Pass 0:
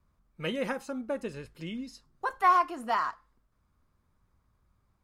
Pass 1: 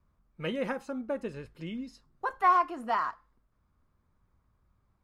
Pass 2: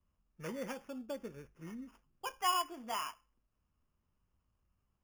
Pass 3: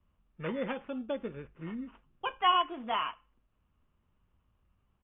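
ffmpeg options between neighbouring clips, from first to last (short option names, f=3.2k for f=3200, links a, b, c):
-af "highshelf=f=3.8k:g=-9"
-filter_complex "[0:a]flanger=delay=3.6:depth=1.4:regen=-80:speed=0.88:shape=sinusoidal,acrossover=split=550[a][b];[b]acrusher=samples=11:mix=1:aa=0.000001[c];[a][c]amix=inputs=2:normalize=0,volume=-4.5dB"
-af "aresample=8000,aresample=44100,volume=7dB"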